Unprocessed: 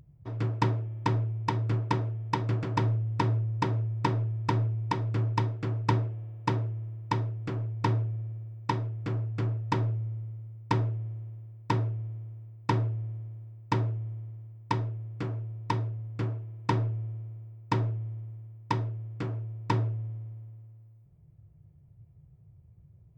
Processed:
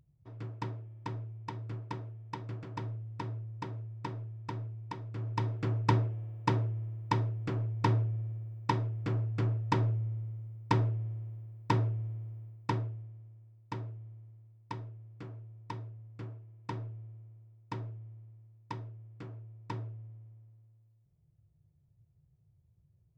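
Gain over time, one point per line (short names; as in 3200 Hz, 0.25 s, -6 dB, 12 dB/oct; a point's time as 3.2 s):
5.11 s -12 dB
5.57 s -1 dB
12.45 s -1 dB
13.11 s -12 dB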